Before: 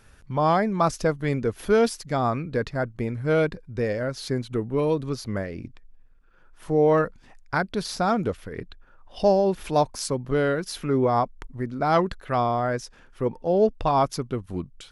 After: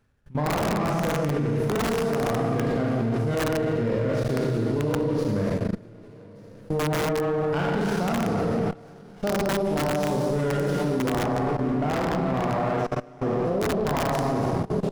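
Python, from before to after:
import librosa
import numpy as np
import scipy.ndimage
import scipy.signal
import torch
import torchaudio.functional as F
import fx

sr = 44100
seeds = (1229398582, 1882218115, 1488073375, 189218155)

y = fx.reverse_delay_fb(x, sr, ms=644, feedback_pct=61, wet_db=-12.0)
y = fx.echo_alternate(y, sr, ms=145, hz=810.0, feedback_pct=56, wet_db=-5.5)
y = fx.rev_schroeder(y, sr, rt60_s=1.6, comb_ms=27, drr_db=-3.5)
y = (np.mod(10.0 ** (8.5 / 20.0) * y + 1.0, 2.0) - 1.0) / 10.0 ** (8.5 / 20.0)
y = fx.peak_eq(y, sr, hz=160.0, db=7.0, octaves=2.5)
y = fx.level_steps(y, sr, step_db=21)
y = fx.lowpass(y, sr, hz=3100.0, slope=6, at=(11.23, 13.45))
y = fx.running_max(y, sr, window=9)
y = y * librosa.db_to_amplitude(-3.0)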